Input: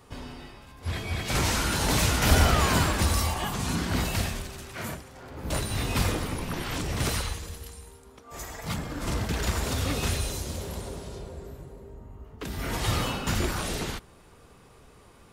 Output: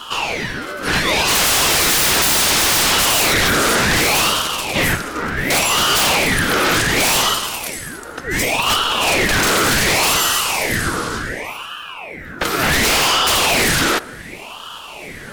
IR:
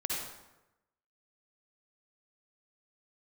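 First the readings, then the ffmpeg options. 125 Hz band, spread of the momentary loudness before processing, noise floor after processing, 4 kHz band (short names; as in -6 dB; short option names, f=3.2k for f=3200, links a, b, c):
+1.5 dB, 19 LU, -33 dBFS, +17.0 dB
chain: -af "highpass=f=830:t=q:w=3.7,aeval=exprs='0.355*sin(PI/2*8.91*val(0)/0.355)':c=same,aeval=exprs='val(0)*sin(2*PI*1300*n/s+1300*0.65/0.68*sin(2*PI*0.68*n/s))':c=same"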